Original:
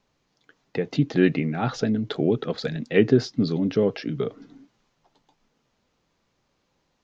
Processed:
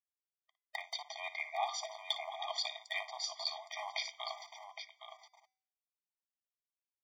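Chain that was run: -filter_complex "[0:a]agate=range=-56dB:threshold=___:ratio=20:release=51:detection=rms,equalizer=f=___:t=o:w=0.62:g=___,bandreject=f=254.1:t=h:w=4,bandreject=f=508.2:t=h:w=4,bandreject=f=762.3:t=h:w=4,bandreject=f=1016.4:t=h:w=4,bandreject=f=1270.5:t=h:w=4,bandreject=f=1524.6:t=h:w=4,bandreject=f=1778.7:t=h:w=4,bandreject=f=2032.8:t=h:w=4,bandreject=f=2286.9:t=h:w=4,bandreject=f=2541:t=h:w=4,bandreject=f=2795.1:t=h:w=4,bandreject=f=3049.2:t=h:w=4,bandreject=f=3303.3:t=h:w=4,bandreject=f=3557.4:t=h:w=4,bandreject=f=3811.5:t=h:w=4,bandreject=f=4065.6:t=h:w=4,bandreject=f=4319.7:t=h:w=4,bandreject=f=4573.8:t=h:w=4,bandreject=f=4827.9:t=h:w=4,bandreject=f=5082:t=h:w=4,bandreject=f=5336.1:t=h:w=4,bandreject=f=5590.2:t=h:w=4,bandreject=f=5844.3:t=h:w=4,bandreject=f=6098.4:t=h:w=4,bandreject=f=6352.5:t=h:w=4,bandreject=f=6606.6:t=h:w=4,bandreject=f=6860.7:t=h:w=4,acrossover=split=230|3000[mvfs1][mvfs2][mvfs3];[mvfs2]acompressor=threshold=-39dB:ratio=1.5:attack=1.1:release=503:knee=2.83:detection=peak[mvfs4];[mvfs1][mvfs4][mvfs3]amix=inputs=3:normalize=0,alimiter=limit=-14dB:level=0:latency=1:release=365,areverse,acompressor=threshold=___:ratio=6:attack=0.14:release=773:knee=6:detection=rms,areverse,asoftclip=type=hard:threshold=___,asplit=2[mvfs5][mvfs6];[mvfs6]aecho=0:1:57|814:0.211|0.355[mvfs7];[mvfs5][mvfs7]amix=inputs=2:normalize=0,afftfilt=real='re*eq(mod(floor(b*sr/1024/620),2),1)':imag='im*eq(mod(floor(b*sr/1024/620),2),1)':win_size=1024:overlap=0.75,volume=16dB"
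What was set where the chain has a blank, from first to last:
-48dB, 96, 4.5, -33dB, -32dB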